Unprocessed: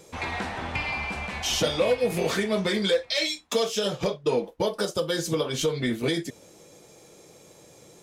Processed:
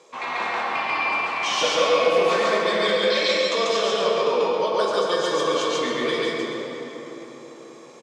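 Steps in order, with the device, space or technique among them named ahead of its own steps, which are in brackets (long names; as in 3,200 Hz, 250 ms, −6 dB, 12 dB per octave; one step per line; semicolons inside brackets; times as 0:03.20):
station announcement (band-pass filter 410–4,500 Hz; parametric band 1,100 Hz +12 dB 0.21 octaves; loudspeakers that aren't time-aligned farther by 48 metres 0 dB, 93 metres −10 dB; convolution reverb RT60 4.3 s, pre-delay 6 ms, DRR −0.5 dB)
0:03.13–0:03.71: Butterworth low-pass 10,000 Hz 36 dB per octave
parametric band 7,700 Hz +4 dB 0.62 octaves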